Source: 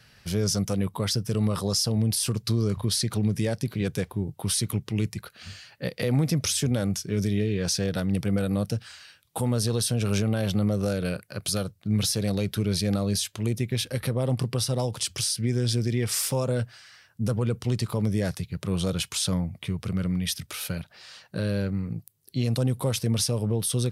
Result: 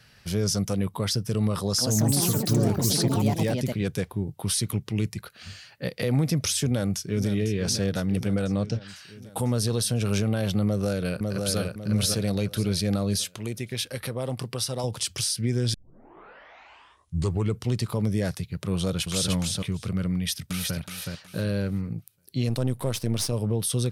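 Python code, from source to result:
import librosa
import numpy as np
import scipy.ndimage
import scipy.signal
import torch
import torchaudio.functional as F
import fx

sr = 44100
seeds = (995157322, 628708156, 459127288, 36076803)

y = fx.echo_pitch(x, sr, ms=202, semitones=4, count=3, db_per_echo=-3.0, at=(1.58, 4.03))
y = fx.echo_throw(y, sr, start_s=6.66, length_s=0.63, ms=500, feedback_pct=70, wet_db=-10.5)
y = fx.lowpass(y, sr, hz=fx.line((8.27, 12000.0), (8.87, 5100.0)), slope=24, at=(8.27, 8.87), fade=0.02)
y = fx.echo_throw(y, sr, start_s=10.65, length_s=0.94, ms=550, feedback_pct=35, wet_db=-3.5)
y = fx.low_shelf(y, sr, hz=340.0, db=-8.0, at=(13.38, 14.84))
y = fx.echo_throw(y, sr, start_s=18.76, length_s=0.56, ms=300, feedback_pct=10, wet_db=-3.0)
y = fx.echo_throw(y, sr, start_s=20.13, length_s=0.65, ms=370, feedback_pct=25, wet_db=-3.5)
y = fx.halfwave_gain(y, sr, db=-7.0, at=(22.49, 23.33))
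y = fx.edit(y, sr, fx.tape_start(start_s=15.74, length_s=1.89), tone=tone)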